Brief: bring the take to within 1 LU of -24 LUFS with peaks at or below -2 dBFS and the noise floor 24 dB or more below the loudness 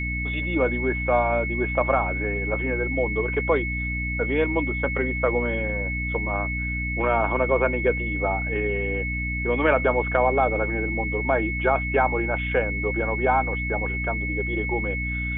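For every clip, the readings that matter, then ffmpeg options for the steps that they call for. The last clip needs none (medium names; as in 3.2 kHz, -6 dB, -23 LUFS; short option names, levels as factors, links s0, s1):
hum 60 Hz; highest harmonic 300 Hz; hum level -27 dBFS; steady tone 2.2 kHz; tone level -28 dBFS; loudness -24.0 LUFS; peak level -7.5 dBFS; loudness target -24.0 LUFS
-> -af "bandreject=f=60:t=h:w=4,bandreject=f=120:t=h:w=4,bandreject=f=180:t=h:w=4,bandreject=f=240:t=h:w=4,bandreject=f=300:t=h:w=4"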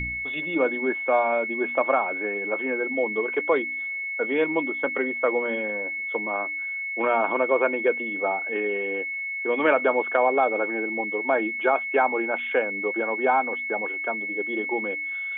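hum not found; steady tone 2.2 kHz; tone level -28 dBFS
-> -af "bandreject=f=2200:w=30"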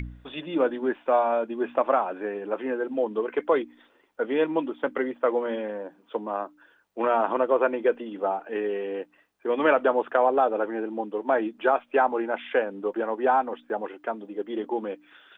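steady tone not found; loudness -26.5 LUFS; peak level -8.5 dBFS; loudness target -24.0 LUFS
-> -af "volume=1.33"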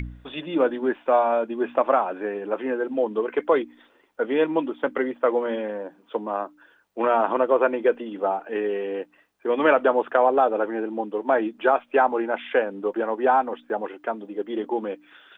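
loudness -24.0 LUFS; peak level -6.0 dBFS; noise floor -60 dBFS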